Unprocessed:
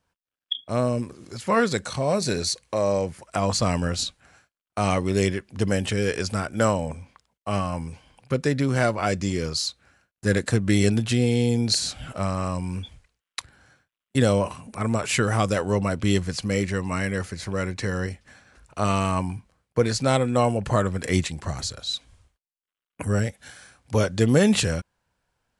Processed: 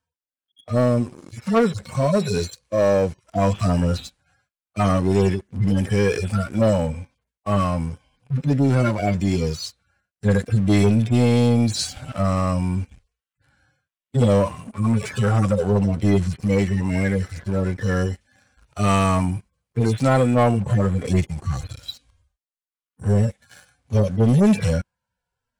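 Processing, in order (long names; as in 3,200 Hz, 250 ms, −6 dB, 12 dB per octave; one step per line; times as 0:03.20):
harmonic-percussive split with one part muted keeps harmonic
0:17.96–0:20.34: high-shelf EQ 4,700 Hz +6 dB
leveller curve on the samples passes 2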